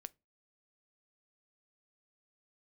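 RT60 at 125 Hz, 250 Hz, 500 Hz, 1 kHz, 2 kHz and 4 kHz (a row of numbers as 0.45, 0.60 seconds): 0.30, 0.30, 0.30, 0.20, 0.20, 0.20 seconds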